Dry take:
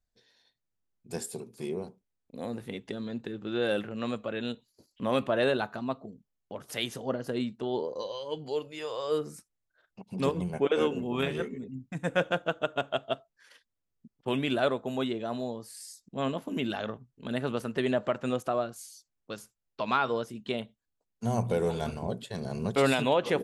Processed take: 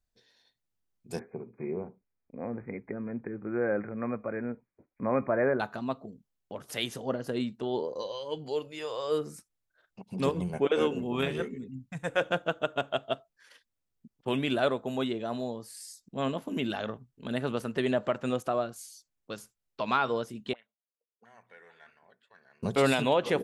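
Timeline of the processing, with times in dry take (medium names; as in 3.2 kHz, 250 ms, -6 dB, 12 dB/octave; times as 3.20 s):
1.19–5.60 s: brick-wall FIR low-pass 2.5 kHz
11.50–12.21 s: peaking EQ 980 Hz -> 160 Hz -14 dB 0.72 oct
20.53–22.63 s: auto-wah 430–1800 Hz, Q 9, up, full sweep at -31 dBFS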